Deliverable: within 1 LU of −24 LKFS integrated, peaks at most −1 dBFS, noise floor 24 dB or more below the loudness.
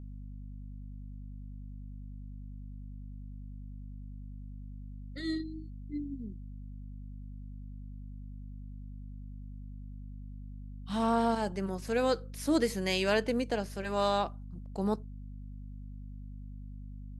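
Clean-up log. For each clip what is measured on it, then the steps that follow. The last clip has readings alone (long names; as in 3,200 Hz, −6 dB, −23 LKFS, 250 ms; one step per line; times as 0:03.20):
mains hum 50 Hz; hum harmonics up to 250 Hz; level of the hum −41 dBFS; integrated loudness −32.5 LKFS; sample peak −15.5 dBFS; target loudness −24.0 LKFS
→ mains-hum notches 50/100/150/200/250 Hz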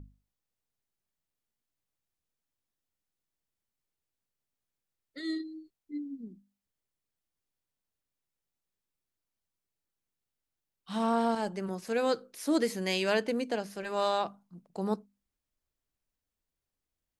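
mains hum none found; integrated loudness −32.0 LKFS; sample peak −16.0 dBFS; target loudness −24.0 LKFS
→ level +8 dB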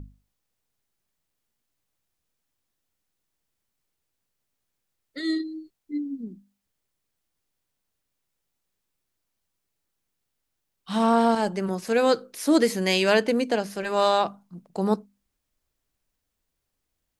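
integrated loudness −24.0 LKFS; sample peak −8.0 dBFS; background noise floor −80 dBFS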